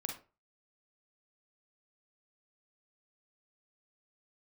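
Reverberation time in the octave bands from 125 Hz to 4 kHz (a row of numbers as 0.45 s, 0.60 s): 0.40 s, 0.35 s, 0.35 s, 0.30 s, 0.25 s, 0.20 s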